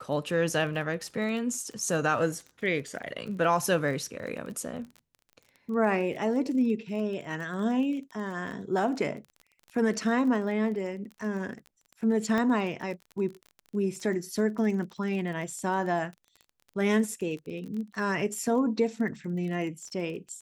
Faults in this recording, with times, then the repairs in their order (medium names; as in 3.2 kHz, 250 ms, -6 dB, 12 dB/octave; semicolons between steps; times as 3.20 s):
crackle 28 per s -37 dBFS
12.38 s: pop -17 dBFS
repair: de-click